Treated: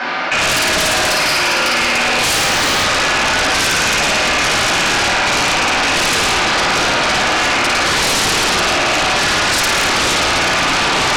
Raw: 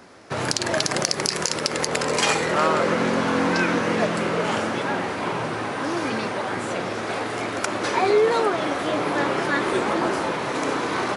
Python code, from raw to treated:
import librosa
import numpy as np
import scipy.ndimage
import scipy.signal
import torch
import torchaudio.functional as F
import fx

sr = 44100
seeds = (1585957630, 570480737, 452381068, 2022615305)

p1 = fx.rattle_buzz(x, sr, strikes_db=-31.0, level_db=-16.0)
p2 = fx.bandpass_q(p1, sr, hz=2700.0, q=0.8)
p3 = p2 + fx.room_flutter(p2, sr, wall_m=9.3, rt60_s=1.3, dry=0)
p4 = fx.rider(p3, sr, range_db=4, speed_s=2.0)
p5 = fx.air_absorb(p4, sr, metres=190.0)
p6 = fx.room_shoebox(p5, sr, seeds[0], volume_m3=320.0, walls='furnished', distance_m=7.8)
p7 = fx.mod_noise(p6, sr, seeds[1], snr_db=25, at=(2.35, 2.84))
p8 = fx.fold_sine(p7, sr, drive_db=8, ceiling_db=-8.5)
p9 = fx.env_flatten(p8, sr, amount_pct=70)
y = F.gain(torch.from_numpy(p9), -3.5).numpy()